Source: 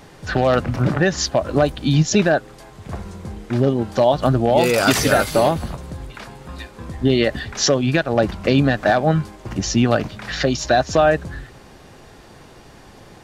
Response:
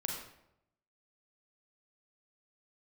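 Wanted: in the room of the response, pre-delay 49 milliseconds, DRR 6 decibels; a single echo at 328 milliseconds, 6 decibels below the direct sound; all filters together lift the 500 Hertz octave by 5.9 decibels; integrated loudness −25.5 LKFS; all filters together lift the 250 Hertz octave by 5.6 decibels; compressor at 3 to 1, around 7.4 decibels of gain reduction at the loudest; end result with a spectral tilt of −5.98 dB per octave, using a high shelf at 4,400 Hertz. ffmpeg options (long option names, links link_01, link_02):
-filter_complex "[0:a]equalizer=frequency=250:width_type=o:gain=5,equalizer=frequency=500:width_type=o:gain=6.5,highshelf=frequency=4400:gain=-7.5,acompressor=threshold=-16dB:ratio=3,aecho=1:1:328:0.501,asplit=2[link_01][link_02];[1:a]atrim=start_sample=2205,adelay=49[link_03];[link_02][link_03]afir=irnorm=-1:irlink=0,volume=-8dB[link_04];[link_01][link_04]amix=inputs=2:normalize=0,volume=-7dB"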